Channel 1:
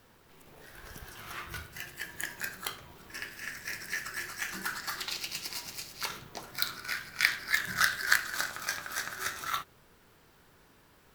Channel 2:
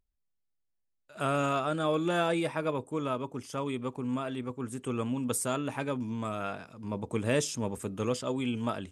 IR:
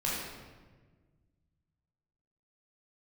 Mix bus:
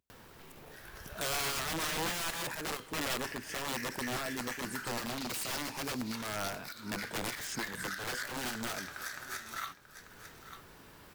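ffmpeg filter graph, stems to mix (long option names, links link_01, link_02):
-filter_complex "[0:a]acompressor=mode=upward:threshold=-44dB:ratio=2.5,adelay=100,volume=-1.5dB,asplit=2[link_01][link_02];[link_02]volume=-16.5dB[link_03];[1:a]highpass=frequency=65:width=0.5412,highpass=frequency=65:width=1.3066,equalizer=frequency=87:width_type=o:width=1.1:gain=-7.5,aeval=exprs='(mod(26.6*val(0)+1,2)-1)/26.6':channel_layout=same,volume=1dB,asplit=2[link_04][link_05];[link_05]volume=-20dB[link_06];[link_03][link_06]amix=inputs=2:normalize=0,aecho=0:1:890:1[link_07];[link_01][link_04][link_07]amix=inputs=3:normalize=0,alimiter=level_in=3dB:limit=-24dB:level=0:latency=1:release=261,volume=-3dB"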